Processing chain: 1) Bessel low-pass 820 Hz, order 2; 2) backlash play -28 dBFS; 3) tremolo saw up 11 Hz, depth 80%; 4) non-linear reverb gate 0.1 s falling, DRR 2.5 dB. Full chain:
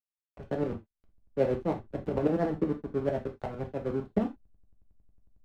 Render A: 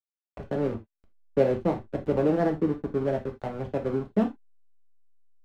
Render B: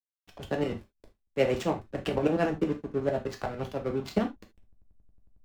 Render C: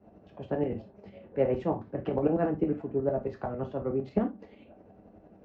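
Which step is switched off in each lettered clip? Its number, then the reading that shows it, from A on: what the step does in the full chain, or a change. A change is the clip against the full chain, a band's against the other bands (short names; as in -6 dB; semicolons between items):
3, loudness change +4.0 LU; 1, 2 kHz band +7.0 dB; 2, distortion -10 dB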